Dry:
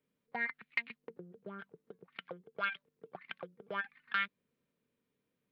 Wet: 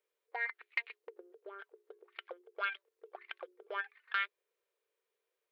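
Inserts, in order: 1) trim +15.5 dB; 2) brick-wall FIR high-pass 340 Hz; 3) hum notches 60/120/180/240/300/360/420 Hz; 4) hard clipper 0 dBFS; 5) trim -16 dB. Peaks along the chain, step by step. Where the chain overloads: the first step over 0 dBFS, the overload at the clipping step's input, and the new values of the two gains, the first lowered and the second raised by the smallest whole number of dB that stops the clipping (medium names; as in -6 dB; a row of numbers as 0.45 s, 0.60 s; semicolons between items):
-4.0 dBFS, -4.0 dBFS, -4.0 dBFS, -4.0 dBFS, -20.0 dBFS; nothing clips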